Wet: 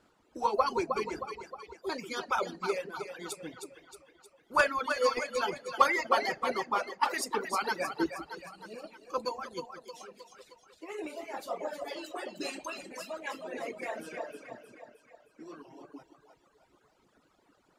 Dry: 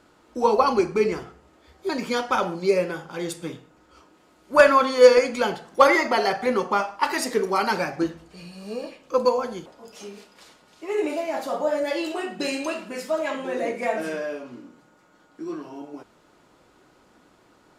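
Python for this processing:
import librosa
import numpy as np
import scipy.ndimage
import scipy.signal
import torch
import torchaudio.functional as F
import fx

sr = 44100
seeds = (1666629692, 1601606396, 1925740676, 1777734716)

y = fx.echo_split(x, sr, split_hz=390.0, low_ms=178, high_ms=312, feedback_pct=52, wet_db=-6.0)
y = fx.dereverb_blind(y, sr, rt60_s=1.5)
y = fx.hpss(y, sr, part='harmonic', gain_db=-11)
y = y * 10.0 ** (-5.0 / 20.0)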